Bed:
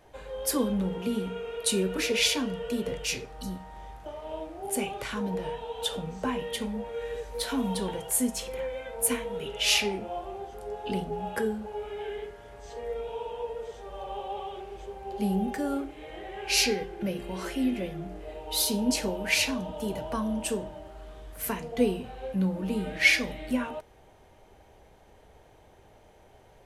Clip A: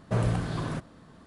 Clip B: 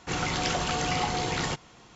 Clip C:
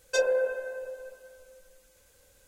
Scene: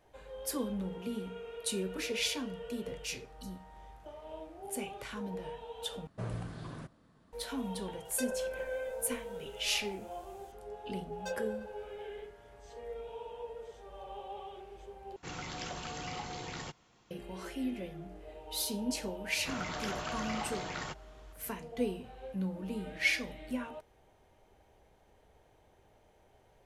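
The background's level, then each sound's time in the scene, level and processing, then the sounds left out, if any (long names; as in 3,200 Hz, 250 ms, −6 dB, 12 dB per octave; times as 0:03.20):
bed −8.5 dB
0:06.07: overwrite with A −12.5 dB
0:08.05: mix in C −2.5 dB + downward compressor, threshold −32 dBFS
0:11.12: mix in C −14 dB + slack as between gear wheels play −37 dBFS
0:15.16: overwrite with B −13 dB
0:19.38: mix in B −13 dB + parametric band 1,400 Hz +6.5 dB 1.2 octaves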